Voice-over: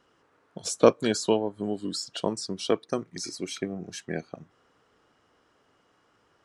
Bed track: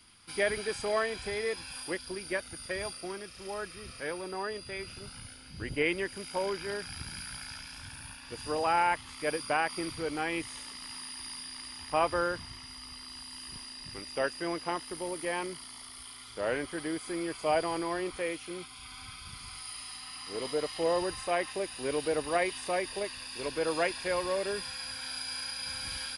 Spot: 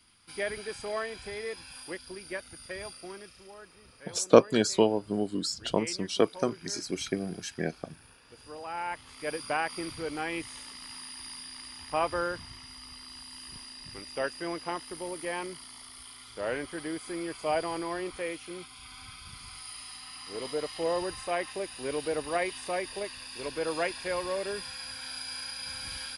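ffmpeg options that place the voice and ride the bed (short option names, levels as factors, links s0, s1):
-filter_complex "[0:a]adelay=3500,volume=1.06[s0];[1:a]volume=2.11,afade=t=out:st=3.28:d=0.24:silence=0.421697,afade=t=in:st=8.68:d=0.79:silence=0.298538[s1];[s0][s1]amix=inputs=2:normalize=0"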